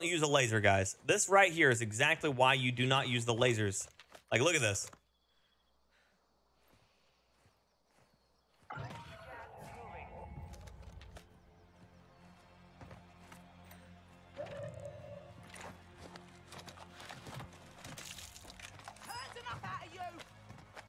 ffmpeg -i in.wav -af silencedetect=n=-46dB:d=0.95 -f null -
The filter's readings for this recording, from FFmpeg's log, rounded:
silence_start: 4.93
silence_end: 8.70 | silence_duration: 3.77
silence_start: 11.19
silence_end: 12.81 | silence_duration: 1.62